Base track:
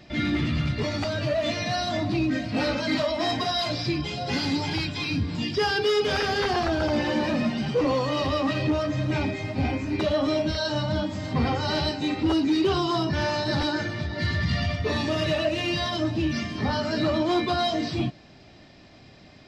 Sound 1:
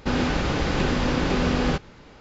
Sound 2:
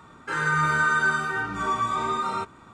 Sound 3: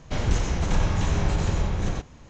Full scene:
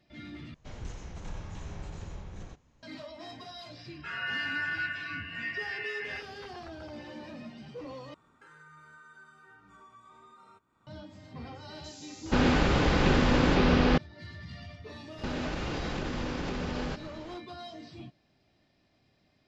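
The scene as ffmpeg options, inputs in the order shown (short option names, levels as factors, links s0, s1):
-filter_complex "[2:a]asplit=2[s0][s1];[1:a]asplit=2[s2][s3];[0:a]volume=0.112[s4];[s0]lowpass=f=2600:t=q:w=0.5098,lowpass=f=2600:t=q:w=0.6013,lowpass=f=2600:t=q:w=0.9,lowpass=f=2600:t=q:w=2.563,afreqshift=-3000[s5];[s1]acompressor=threshold=0.00891:ratio=3:attack=8.1:release=628:knee=1:detection=peak[s6];[s2]acrossover=split=6000[s7][s8];[s7]adelay=480[s9];[s9][s8]amix=inputs=2:normalize=0[s10];[s3]acompressor=threshold=0.0316:ratio=6:attack=3.2:release=140:knee=1:detection=peak[s11];[s4]asplit=3[s12][s13][s14];[s12]atrim=end=0.544[s15];[3:a]atrim=end=2.29,asetpts=PTS-STARTPTS,volume=0.133[s16];[s13]atrim=start=2.826:end=8.144[s17];[s6]atrim=end=2.73,asetpts=PTS-STARTPTS,volume=0.168[s18];[s14]atrim=start=10.866[s19];[s5]atrim=end=2.73,asetpts=PTS-STARTPTS,volume=0.282,afade=t=in:d=0.004:c=hsin,afade=t=out:st=2.726:d=0.004:c=hsin,adelay=3760[s20];[s10]atrim=end=2.2,asetpts=PTS-STARTPTS,volume=0.944,afade=t=in:d=0.004:c=hsin,afade=t=out:st=2.196:d=0.004:c=hsin,adelay=519498S[s21];[s11]atrim=end=2.2,asetpts=PTS-STARTPTS,volume=0.944,afade=t=in:d=0.004:c=hsin,afade=t=out:st=2.196:d=0.004:c=hsin,adelay=15180[s22];[s15][s16]acrossfade=d=0.004:c1=hsin:c2=hsin[s23];[s23][s17]acrossfade=d=0.004:c1=hsin:c2=hsin[s24];[s24][s18]acrossfade=d=0.004:c1=hsin:c2=hsin[s25];[s25][s19]acrossfade=d=0.004:c1=hsin:c2=hsin[s26];[s26][s20][s21][s22]amix=inputs=4:normalize=0"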